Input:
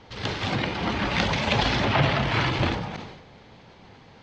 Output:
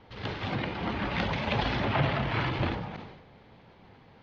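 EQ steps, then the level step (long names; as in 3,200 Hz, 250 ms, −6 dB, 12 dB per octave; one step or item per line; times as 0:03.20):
high-frequency loss of the air 190 metres
−4.5 dB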